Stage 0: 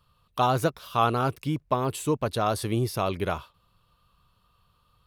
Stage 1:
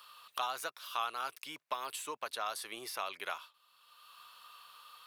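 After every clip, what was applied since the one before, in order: HPF 1200 Hz 12 dB/oct; three-band squash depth 70%; gain -5 dB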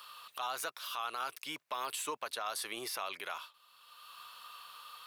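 limiter -31.5 dBFS, peak gain reduction 10.5 dB; gain +4.5 dB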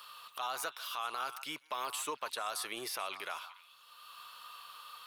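delay with a stepping band-pass 0.146 s, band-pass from 1100 Hz, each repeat 1.4 oct, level -10 dB

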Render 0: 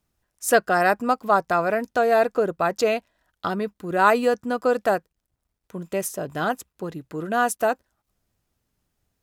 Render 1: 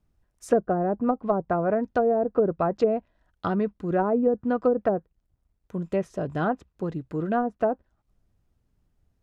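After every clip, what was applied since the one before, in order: treble ducked by the level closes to 500 Hz, closed at -15.5 dBFS; tilt -2.5 dB/oct; gain -2.5 dB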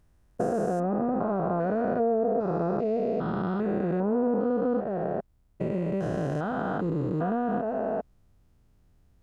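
stepped spectrum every 0.4 s; compressor 2.5:1, threshold -34 dBFS, peak gain reduction 8 dB; gain +8.5 dB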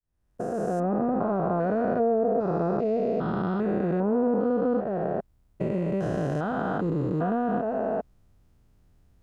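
opening faded in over 0.84 s; gain +1.5 dB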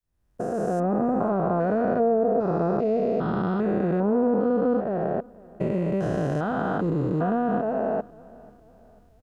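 feedback echo 0.493 s, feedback 45%, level -23 dB; gain +2 dB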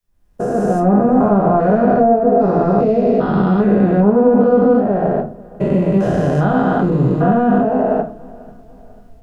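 shoebox room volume 170 m³, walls furnished, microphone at 1.3 m; gain +6.5 dB

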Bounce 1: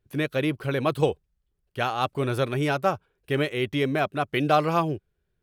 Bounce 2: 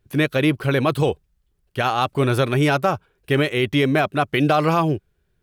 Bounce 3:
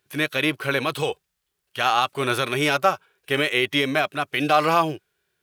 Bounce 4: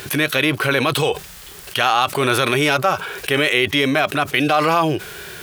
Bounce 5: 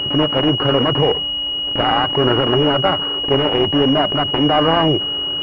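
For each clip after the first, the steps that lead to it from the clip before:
limiter -16 dBFS, peak gain reduction 7.5 dB; bell 500 Hz -2 dB; gain +8 dB
HPF 1400 Hz 6 dB/oct; harmonic-percussive split percussive -9 dB; gain +9 dB
fast leveller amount 70%
sample sorter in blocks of 16 samples; pulse-width modulation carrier 2900 Hz; gain +4 dB

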